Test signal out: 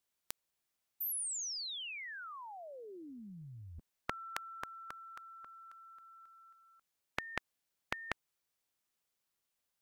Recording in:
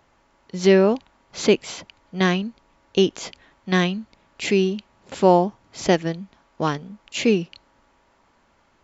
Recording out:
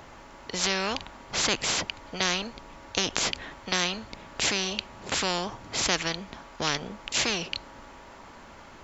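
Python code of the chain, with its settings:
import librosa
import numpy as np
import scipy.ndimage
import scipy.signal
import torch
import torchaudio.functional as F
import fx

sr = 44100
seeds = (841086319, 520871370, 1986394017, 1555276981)

y = fx.spectral_comp(x, sr, ratio=4.0)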